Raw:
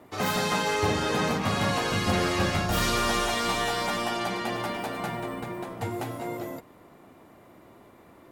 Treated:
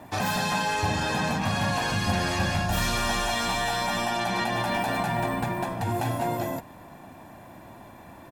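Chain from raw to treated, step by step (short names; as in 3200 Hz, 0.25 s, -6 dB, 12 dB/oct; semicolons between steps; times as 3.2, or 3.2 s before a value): comb 1.2 ms, depth 59%; in parallel at -1 dB: negative-ratio compressor -32 dBFS, ratio -0.5; on the sum: gain -2.5 dB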